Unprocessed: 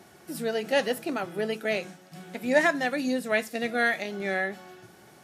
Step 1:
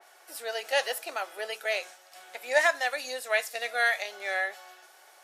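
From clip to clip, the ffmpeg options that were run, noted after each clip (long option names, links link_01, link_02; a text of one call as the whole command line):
ffmpeg -i in.wav -af "highpass=frequency=580:width=0.5412,highpass=frequency=580:width=1.3066,adynamicequalizer=threshold=0.00891:dfrequency=3200:dqfactor=0.7:tfrequency=3200:tqfactor=0.7:attack=5:release=100:ratio=0.375:range=2:mode=boostabove:tftype=highshelf" out.wav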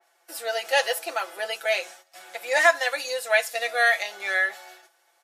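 ffmpeg -i in.wav -af "agate=range=-14dB:threshold=-52dB:ratio=16:detection=peak,aecho=1:1:5.9:0.74,volume=3dB" out.wav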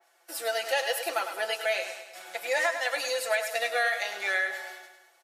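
ffmpeg -i in.wav -filter_complex "[0:a]acompressor=threshold=-24dB:ratio=6,asplit=2[link_01][link_02];[link_02]aecho=0:1:103|206|309|412|515|618:0.355|0.188|0.0997|0.0528|0.028|0.0148[link_03];[link_01][link_03]amix=inputs=2:normalize=0" out.wav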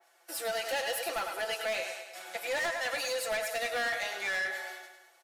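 ffmpeg -i in.wav -af "asoftclip=type=tanh:threshold=-28dB" out.wav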